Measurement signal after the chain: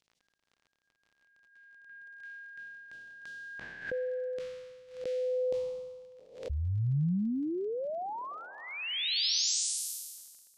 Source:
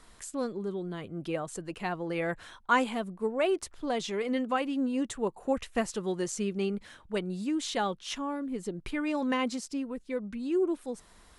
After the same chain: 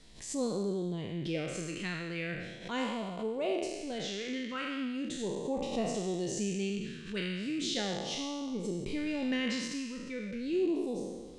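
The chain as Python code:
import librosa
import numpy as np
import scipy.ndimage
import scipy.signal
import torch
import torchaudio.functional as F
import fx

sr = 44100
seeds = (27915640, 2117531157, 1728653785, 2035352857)

y = fx.spec_trails(x, sr, decay_s=1.42)
y = fx.rider(y, sr, range_db=4, speed_s=2.0)
y = fx.low_shelf(y, sr, hz=380.0, db=-7.0)
y = fx.phaser_stages(y, sr, stages=2, low_hz=780.0, high_hz=1600.0, hz=0.38, feedback_pct=20)
y = fx.peak_eq(y, sr, hz=150.0, db=5.5, octaves=1.3)
y = fx.dmg_crackle(y, sr, seeds[0], per_s=37.0, level_db=-48.0)
y = scipy.signal.sosfilt(scipy.signal.butter(2, 5200.0, 'lowpass', fs=sr, output='sos'), y)
y = fx.pre_swell(y, sr, db_per_s=110.0)
y = y * librosa.db_to_amplitude(-1.5)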